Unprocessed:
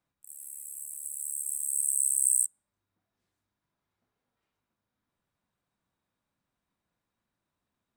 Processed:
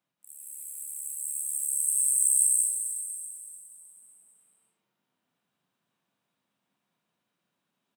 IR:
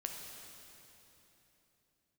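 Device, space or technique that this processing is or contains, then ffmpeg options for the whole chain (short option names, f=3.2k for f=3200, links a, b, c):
stadium PA: -filter_complex "[0:a]highpass=f=140:w=0.5412,highpass=f=140:w=1.3066,equalizer=f=3k:t=o:w=0.5:g=6,aecho=1:1:195.3|239.1:0.891|0.355[a];[1:a]atrim=start_sample=2205[b];[a][b]afir=irnorm=-1:irlink=0,volume=1dB"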